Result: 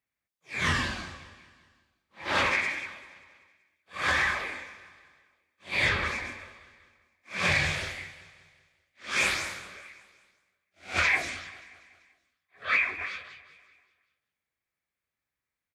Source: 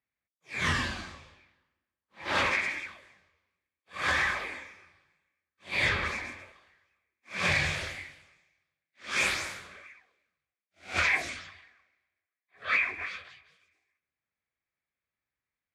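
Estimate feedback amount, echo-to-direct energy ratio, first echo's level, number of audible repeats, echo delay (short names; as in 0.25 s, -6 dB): 55%, -17.5 dB, -19.0 dB, 4, 0.193 s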